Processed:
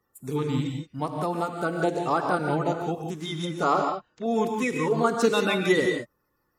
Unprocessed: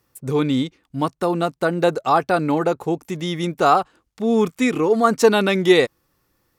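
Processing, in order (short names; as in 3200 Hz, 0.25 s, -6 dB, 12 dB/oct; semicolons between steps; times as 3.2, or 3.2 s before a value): bin magnitudes rounded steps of 30 dB; 3.63–4.26 steep low-pass 7400 Hz 96 dB/oct; non-linear reverb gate 0.2 s rising, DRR 3 dB; gain -7.5 dB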